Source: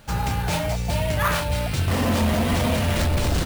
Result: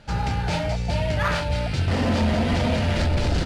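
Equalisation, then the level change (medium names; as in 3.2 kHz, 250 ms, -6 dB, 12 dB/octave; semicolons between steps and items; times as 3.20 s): distance through air 91 m; peaking EQ 4.7 kHz +4.5 dB 0.24 oct; band-stop 1.1 kHz, Q 6.9; 0.0 dB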